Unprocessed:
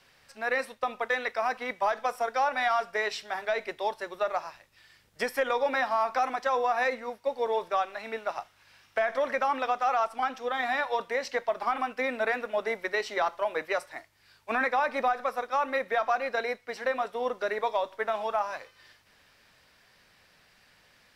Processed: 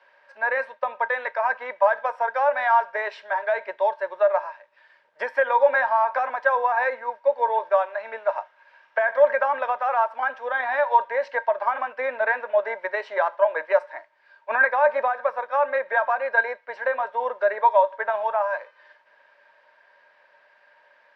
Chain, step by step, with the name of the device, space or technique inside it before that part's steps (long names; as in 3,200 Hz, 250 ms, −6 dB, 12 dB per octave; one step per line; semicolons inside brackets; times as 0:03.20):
tin-can telephone (band-pass filter 580–2,200 Hz; hollow resonant body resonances 590/930/1,600 Hz, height 16 dB, ringing for 55 ms)
level +1.5 dB